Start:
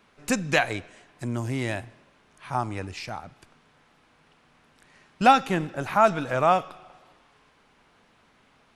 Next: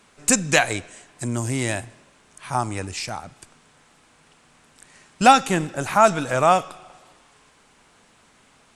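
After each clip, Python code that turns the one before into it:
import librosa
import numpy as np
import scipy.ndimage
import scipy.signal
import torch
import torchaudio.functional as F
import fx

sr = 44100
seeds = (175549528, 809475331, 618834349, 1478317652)

y = fx.peak_eq(x, sr, hz=8100.0, db=14.5, octaves=0.92)
y = y * librosa.db_to_amplitude(3.5)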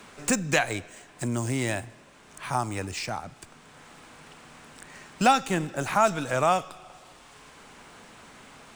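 y = scipy.signal.medfilt(x, 3)
y = fx.band_squash(y, sr, depth_pct=40)
y = y * librosa.db_to_amplitude(-3.5)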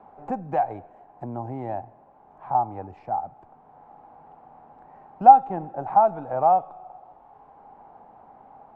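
y = fx.lowpass_res(x, sr, hz=800.0, q=8.7)
y = y * librosa.db_to_amplitude(-6.5)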